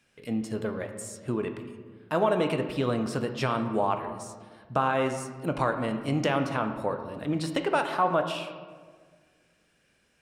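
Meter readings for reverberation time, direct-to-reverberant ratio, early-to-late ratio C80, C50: 1.6 s, 6.0 dB, 9.5 dB, 8.0 dB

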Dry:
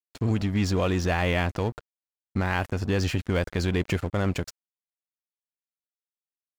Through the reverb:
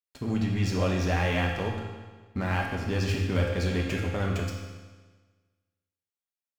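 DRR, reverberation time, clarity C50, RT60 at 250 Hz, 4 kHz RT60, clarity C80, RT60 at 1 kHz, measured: -2.0 dB, 1.4 s, 2.0 dB, 1.4 s, 1.3 s, 4.5 dB, 1.4 s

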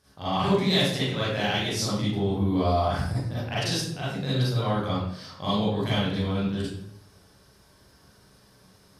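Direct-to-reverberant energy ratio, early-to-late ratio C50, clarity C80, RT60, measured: -11.0 dB, -3.5 dB, 2.0 dB, 0.70 s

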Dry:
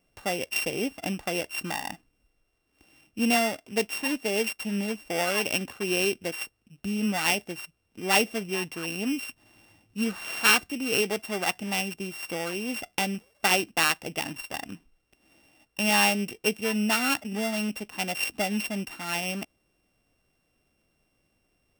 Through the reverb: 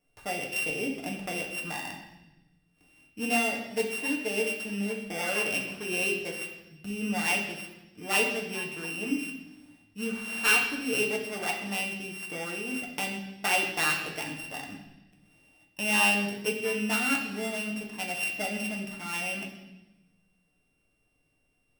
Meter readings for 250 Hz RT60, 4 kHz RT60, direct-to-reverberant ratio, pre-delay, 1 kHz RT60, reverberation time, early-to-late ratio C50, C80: 1.5 s, 1.1 s, -1.5 dB, 4 ms, 0.95 s, 1.0 s, 5.0 dB, 7.5 dB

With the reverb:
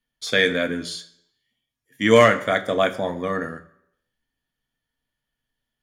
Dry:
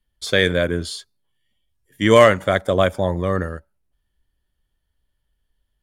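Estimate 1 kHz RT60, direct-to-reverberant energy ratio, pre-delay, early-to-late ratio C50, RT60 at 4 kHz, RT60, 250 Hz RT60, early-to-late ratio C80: 0.70 s, 6.0 dB, 3 ms, 15.5 dB, 0.65 s, 0.70 s, 0.60 s, 18.0 dB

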